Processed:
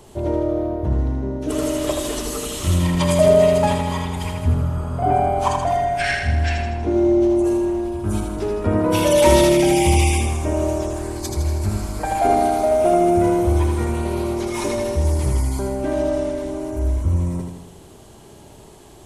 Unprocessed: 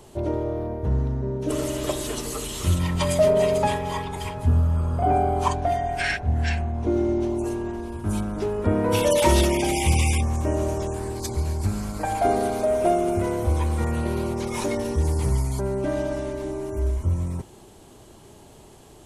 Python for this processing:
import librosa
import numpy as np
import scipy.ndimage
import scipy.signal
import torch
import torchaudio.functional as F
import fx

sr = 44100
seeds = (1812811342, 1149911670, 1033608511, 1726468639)

y = fx.echo_feedback(x, sr, ms=80, feedback_pct=56, wet_db=-4.5)
y = F.gain(torch.from_numpy(y), 2.0).numpy()